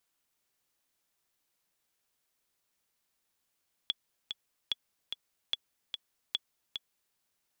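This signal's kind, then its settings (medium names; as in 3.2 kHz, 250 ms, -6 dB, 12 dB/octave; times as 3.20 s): metronome 147 bpm, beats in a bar 2, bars 4, 3.39 kHz, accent 6.5 dB -16.5 dBFS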